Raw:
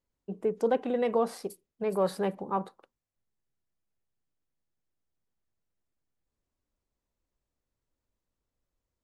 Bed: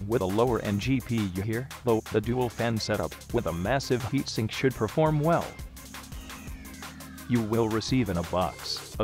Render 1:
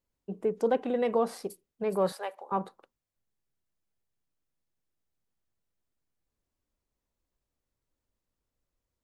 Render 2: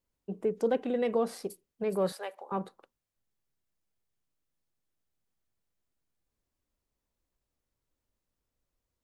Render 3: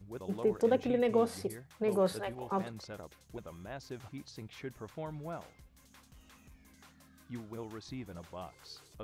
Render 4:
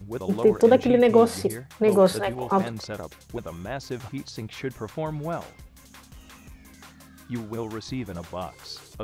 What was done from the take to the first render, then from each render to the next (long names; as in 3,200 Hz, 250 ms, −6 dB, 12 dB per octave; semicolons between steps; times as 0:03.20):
0:02.12–0:02.52: high-pass filter 590 Hz 24 dB per octave
dynamic equaliser 930 Hz, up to −6 dB, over −42 dBFS, Q 1.3
mix in bed −18 dB
level +11.5 dB